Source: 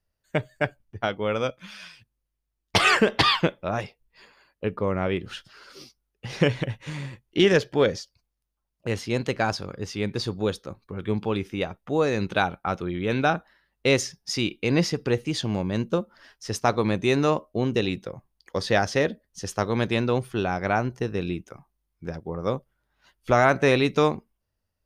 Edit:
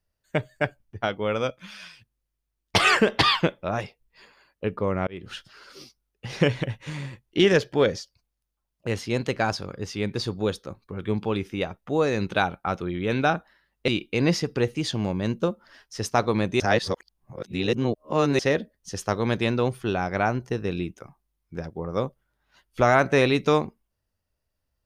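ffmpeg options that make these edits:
ffmpeg -i in.wav -filter_complex "[0:a]asplit=5[link_01][link_02][link_03][link_04][link_05];[link_01]atrim=end=5.07,asetpts=PTS-STARTPTS,afade=type=out:start_time=5.066:duration=0.004:curve=hsin[link_06];[link_02]atrim=start=5.07:end=13.882,asetpts=PTS-STARTPTS,afade=type=in:duration=0.27[link_07];[link_03]atrim=start=14.378:end=17.102[link_08];[link_04]atrim=start=17.098:end=18.892,asetpts=PTS-STARTPTS,areverse[link_09];[link_05]atrim=start=18.888[link_10];[link_06][link_07]concat=n=2:v=0:a=1[link_11];[link_11][link_08]acrossfade=duration=0.004:curve1=hsin:curve2=hsin[link_12];[link_12][link_09]acrossfade=duration=0.004:curve1=hsin:curve2=hsin[link_13];[link_13][link_10]acrossfade=duration=0.004:curve1=hsin:curve2=hsin" out.wav

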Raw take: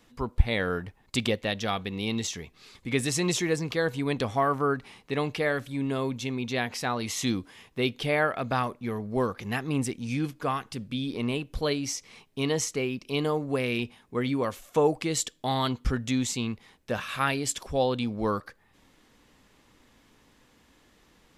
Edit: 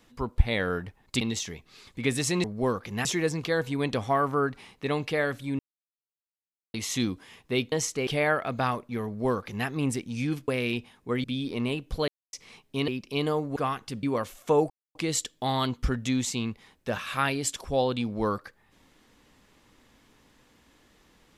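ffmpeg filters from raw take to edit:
ffmpeg -i in.wav -filter_complex "[0:a]asplit=16[link_01][link_02][link_03][link_04][link_05][link_06][link_07][link_08][link_09][link_10][link_11][link_12][link_13][link_14][link_15][link_16];[link_01]atrim=end=1.212[link_17];[link_02]atrim=start=2.088:end=3.322[link_18];[link_03]atrim=start=8.978:end=9.592[link_19];[link_04]atrim=start=3.318:end=5.86,asetpts=PTS-STARTPTS,afade=type=out:start_time=2.538:duration=0.004:curve=hsin[link_20];[link_05]atrim=start=5.86:end=7.01,asetpts=PTS-STARTPTS,volume=0[link_21];[link_06]atrim=start=7.01:end=7.992,asetpts=PTS-STARTPTS,afade=type=in:duration=0.004:curve=hsin[link_22];[link_07]atrim=start=12.508:end=12.862[link_23];[link_08]atrim=start=7.988:end=10.402[link_24];[link_09]atrim=start=13.538:end=14.302[link_25];[link_10]atrim=start=10.868:end=11.71,asetpts=PTS-STARTPTS,afade=type=out:start_time=0.838:duration=0.004:curve=hsin[link_26];[link_11]atrim=start=11.71:end=11.96,asetpts=PTS-STARTPTS,volume=0[link_27];[link_12]atrim=start=11.96:end=12.512,asetpts=PTS-STARTPTS,afade=type=in:duration=0.004:curve=hsin[link_28];[link_13]atrim=start=12.858:end=13.542[link_29];[link_14]atrim=start=10.398:end=10.872[link_30];[link_15]atrim=start=14.298:end=14.97,asetpts=PTS-STARTPTS,afade=type=out:start_time=0.668:duration=0.004:curve=hsin,apad=pad_dur=0.25[link_31];[link_16]atrim=start=14.97,asetpts=PTS-STARTPTS,afade=type=in:duration=0.004:curve=hsin[link_32];[link_17][link_18]acrossfade=duration=0.004:curve1=hsin:curve2=hsin[link_33];[link_33][link_19]acrossfade=duration=0.004:curve1=hsin:curve2=hsin[link_34];[link_20][link_21][link_22]concat=n=3:v=0:a=1[link_35];[link_34][link_35]acrossfade=duration=0.004:curve1=hsin:curve2=hsin[link_36];[link_36][link_23]acrossfade=duration=0.004:curve1=hsin:curve2=hsin[link_37];[link_37][link_24]acrossfade=duration=0.004:curve1=hsin:curve2=hsin[link_38];[link_38][link_25]acrossfade=duration=0.004:curve1=hsin:curve2=hsin[link_39];[link_26][link_27][link_28]concat=n=3:v=0:a=1[link_40];[link_39][link_40]acrossfade=duration=0.004:curve1=hsin:curve2=hsin[link_41];[link_41][link_29]acrossfade=duration=0.004:curve1=hsin:curve2=hsin[link_42];[link_42][link_30]acrossfade=duration=0.004:curve1=hsin:curve2=hsin[link_43];[link_31][link_32]concat=n=2:v=0:a=1[link_44];[link_43][link_44]acrossfade=duration=0.004:curve1=hsin:curve2=hsin" out.wav

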